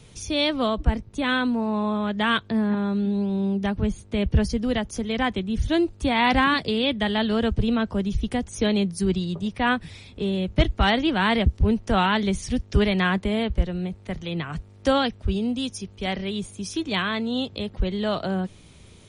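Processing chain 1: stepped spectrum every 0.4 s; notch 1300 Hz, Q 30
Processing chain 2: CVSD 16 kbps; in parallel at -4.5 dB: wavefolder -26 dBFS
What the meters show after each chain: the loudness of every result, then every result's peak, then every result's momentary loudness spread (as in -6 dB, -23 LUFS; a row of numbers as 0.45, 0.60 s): -28.0, -25.0 LUFS; -12.5, -8.5 dBFS; 8, 6 LU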